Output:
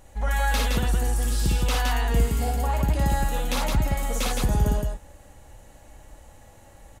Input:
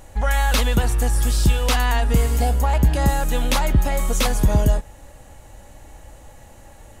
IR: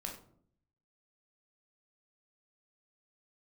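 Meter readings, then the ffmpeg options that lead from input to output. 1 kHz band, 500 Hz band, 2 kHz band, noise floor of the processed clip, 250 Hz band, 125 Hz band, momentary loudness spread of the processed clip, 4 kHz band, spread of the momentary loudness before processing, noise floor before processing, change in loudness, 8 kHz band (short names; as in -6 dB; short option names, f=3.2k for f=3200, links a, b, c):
-4.0 dB, -5.0 dB, -4.0 dB, -51 dBFS, -5.0 dB, -5.0 dB, 3 LU, -4.5 dB, 3 LU, -45 dBFS, -5.0 dB, -4.5 dB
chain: -af "aecho=1:1:55.39|166.2:0.794|0.708,volume=-8dB"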